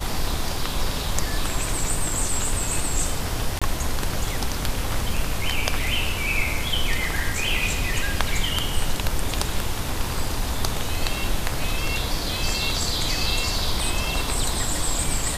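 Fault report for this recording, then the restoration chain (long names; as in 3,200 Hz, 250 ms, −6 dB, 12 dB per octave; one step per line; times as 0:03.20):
0:03.59–0:03.62: drop-out 26 ms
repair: repair the gap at 0:03.59, 26 ms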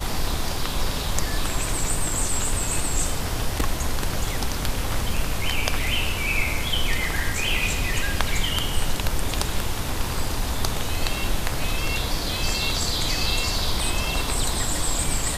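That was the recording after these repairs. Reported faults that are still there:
none of them is left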